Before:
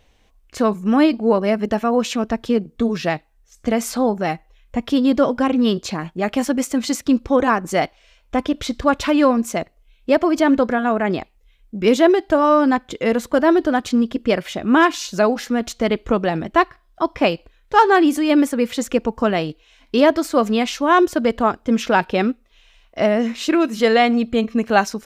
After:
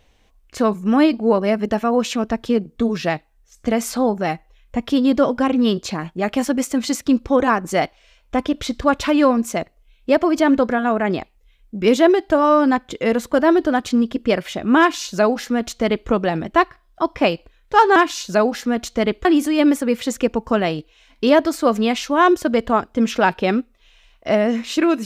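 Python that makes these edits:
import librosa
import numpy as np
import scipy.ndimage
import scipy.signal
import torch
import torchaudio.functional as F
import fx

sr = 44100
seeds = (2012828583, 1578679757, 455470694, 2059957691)

y = fx.edit(x, sr, fx.duplicate(start_s=14.8, length_s=1.29, to_s=17.96), tone=tone)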